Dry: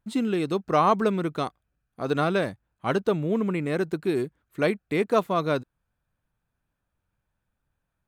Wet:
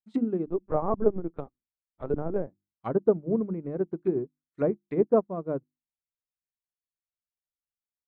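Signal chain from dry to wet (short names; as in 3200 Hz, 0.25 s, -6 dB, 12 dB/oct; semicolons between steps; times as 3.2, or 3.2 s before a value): notch 2800 Hz, Q 26; treble ducked by the level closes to 2000 Hz, closed at -19 dBFS; notches 50/100/150/200/250/300/350 Hz; treble ducked by the level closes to 570 Hz, closed at -24 dBFS; 0.46–2.47 LPC vocoder at 8 kHz pitch kept; upward expander 2.5:1, over -46 dBFS; gain +5.5 dB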